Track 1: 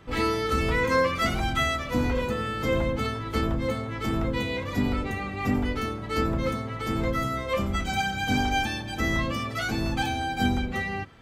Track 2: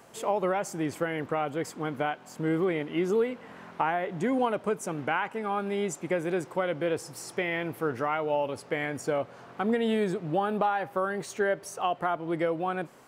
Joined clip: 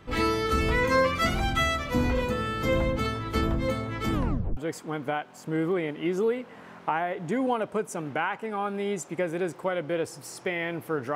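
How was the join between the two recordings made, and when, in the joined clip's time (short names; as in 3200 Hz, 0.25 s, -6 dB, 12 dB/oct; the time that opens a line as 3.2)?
track 1
4.13 tape stop 0.44 s
4.57 switch to track 2 from 1.49 s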